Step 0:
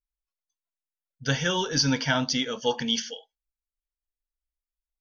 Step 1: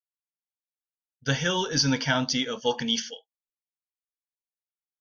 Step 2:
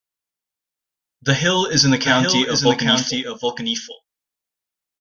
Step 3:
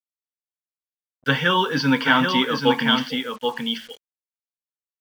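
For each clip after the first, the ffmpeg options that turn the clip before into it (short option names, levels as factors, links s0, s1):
-af "agate=range=0.0224:threshold=0.0224:ratio=3:detection=peak"
-af "aecho=1:1:781:0.562,volume=2.66"
-af "highpass=f=150:w=0.5412,highpass=f=150:w=1.3066,equalizer=f=160:t=q:w=4:g=-3,equalizer=f=350:t=q:w=4:g=-3,equalizer=f=650:t=q:w=4:g=-9,equalizer=f=1100:t=q:w=4:g=9,lowpass=f=3400:w=0.5412,lowpass=f=3400:w=1.3066,acrusher=bits=6:mix=0:aa=0.5,volume=0.891"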